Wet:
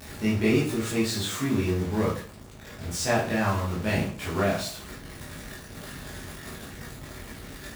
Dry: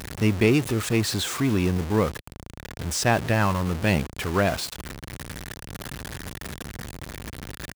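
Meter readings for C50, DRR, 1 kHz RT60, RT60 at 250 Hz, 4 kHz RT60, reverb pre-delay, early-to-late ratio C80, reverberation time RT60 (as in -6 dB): 5.0 dB, -8.0 dB, 0.45 s, 0.50 s, 0.40 s, 14 ms, 10.5 dB, 0.45 s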